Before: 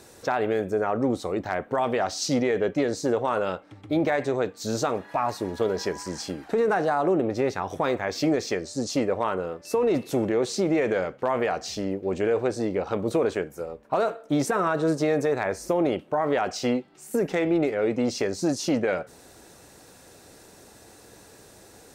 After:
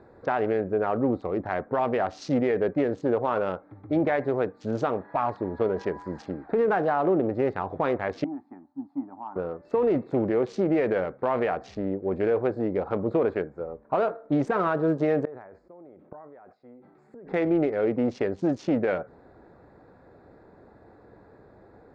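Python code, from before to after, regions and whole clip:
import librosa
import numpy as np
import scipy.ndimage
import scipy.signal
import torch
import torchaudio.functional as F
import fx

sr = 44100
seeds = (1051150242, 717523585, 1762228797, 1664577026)

y = fx.chain(x, sr, fx.law_mismatch(coded='A'),
    fx.double_bandpass(hz=480.0, octaves=1.6),
    fx.peak_eq(hz=470.0, db=-7.0, octaves=0.86), at=(8.24, 9.36))
y = fx.chain(y, sr, fx.low_shelf(hz=63.0, db=-9.5),
    fx.gate_flip(shuts_db=-31.0, range_db=-25),
    fx.sustainer(db_per_s=42.0), at=(15.25, 17.27))
y = fx.wiener(y, sr, points=15)
y = scipy.signal.sosfilt(scipy.signal.butter(2, 2600.0, 'lowpass', fs=sr, output='sos'), y)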